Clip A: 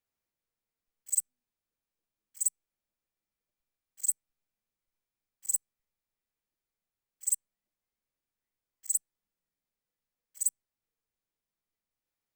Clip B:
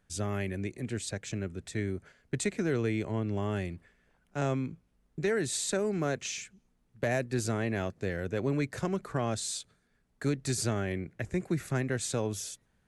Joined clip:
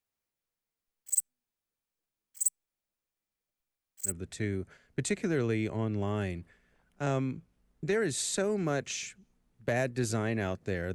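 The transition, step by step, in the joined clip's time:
clip A
4.09 s: go over to clip B from 1.44 s, crossfade 0.10 s

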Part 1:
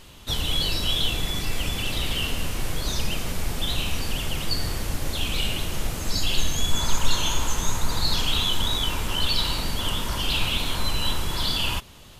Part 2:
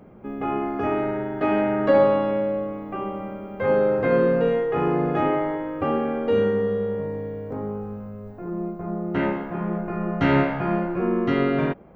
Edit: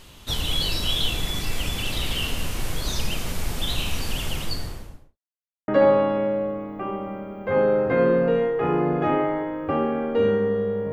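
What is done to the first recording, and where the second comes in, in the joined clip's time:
part 1
4.28–5.18 s: studio fade out
5.18–5.68 s: mute
5.68 s: go over to part 2 from 1.81 s

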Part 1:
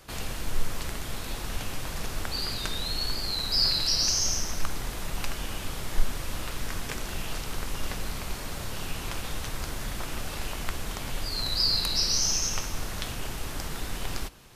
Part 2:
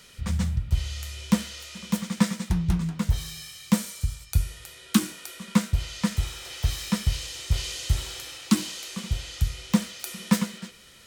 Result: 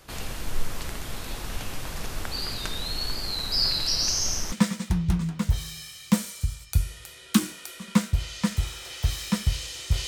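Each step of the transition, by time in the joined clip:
part 1
4.52 s: go over to part 2 from 2.12 s

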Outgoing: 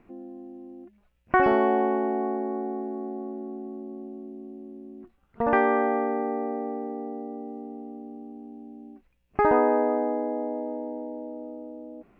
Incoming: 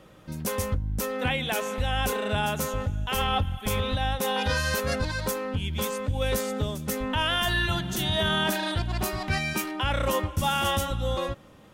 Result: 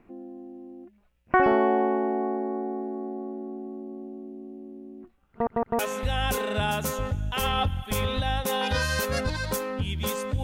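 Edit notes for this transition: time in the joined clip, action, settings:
outgoing
5.31 s: stutter in place 0.16 s, 3 plays
5.79 s: go over to incoming from 1.54 s

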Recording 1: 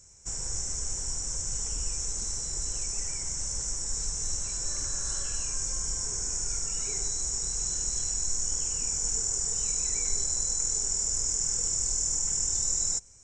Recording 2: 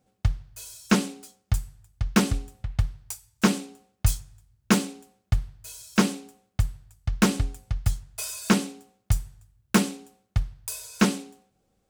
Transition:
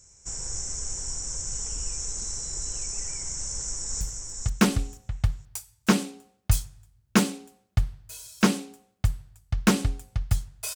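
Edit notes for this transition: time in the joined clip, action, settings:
recording 1
3.42–4.01 s: echo throw 480 ms, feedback 20%, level -4.5 dB
4.01 s: go over to recording 2 from 1.56 s

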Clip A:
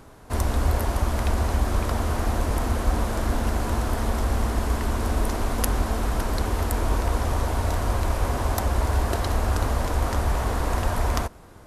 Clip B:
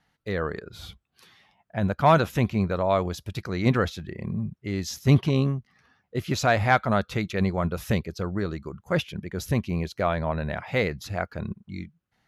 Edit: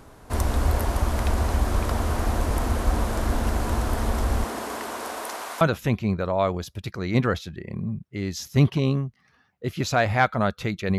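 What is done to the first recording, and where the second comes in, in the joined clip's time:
clip A
4.43–5.61 s: high-pass 240 Hz -> 910 Hz
5.61 s: go over to clip B from 2.12 s

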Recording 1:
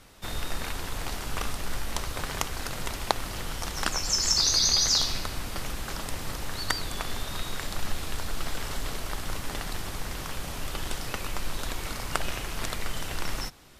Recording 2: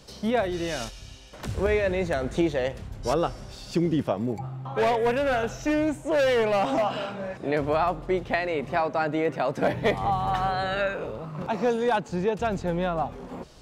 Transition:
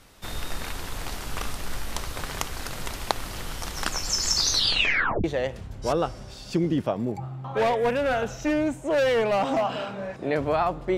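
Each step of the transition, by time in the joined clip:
recording 1
4.50 s: tape stop 0.74 s
5.24 s: go over to recording 2 from 2.45 s

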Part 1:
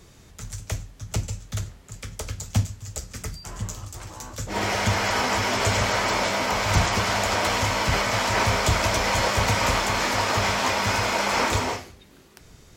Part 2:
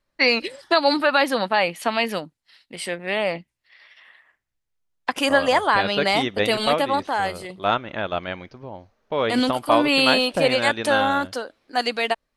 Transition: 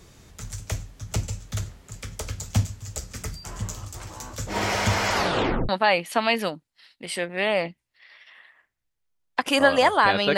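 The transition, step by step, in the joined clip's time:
part 1
5.13 s: tape stop 0.56 s
5.69 s: go over to part 2 from 1.39 s

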